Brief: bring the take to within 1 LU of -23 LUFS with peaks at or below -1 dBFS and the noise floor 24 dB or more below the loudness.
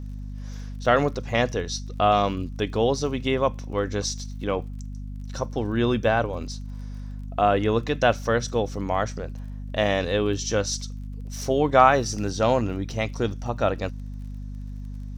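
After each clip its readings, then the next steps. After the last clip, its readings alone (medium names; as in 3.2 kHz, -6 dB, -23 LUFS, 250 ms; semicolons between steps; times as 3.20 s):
tick rate 31 per s; hum 50 Hz; highest harmonic 250 Hz; hum level -32 dBFS; loudness -24.5 LUFS; peak level -3.0 dBFS; loudness target -23.0 LUFS
-> de-click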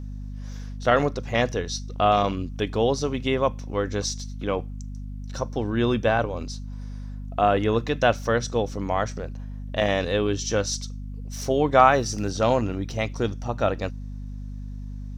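tick rate 0.53 per s; hum 50 Hz; highest harmonic 250 Hz; hum level -32 dBFS
-> hum notches 50/100/150/200/250 Hz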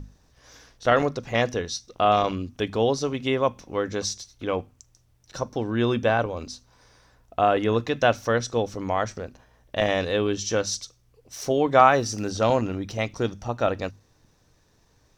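hum not found; loudness -24.5 LUFS; peak level -3.0 dBFS; loudness target -23.0 LUFS
-> trim +1.5 dB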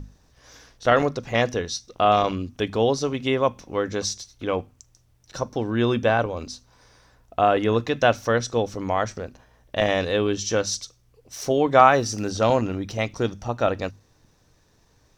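loudness -23.0 LUFS; peak level -1.5 dBFS; noise floor -61 dBFS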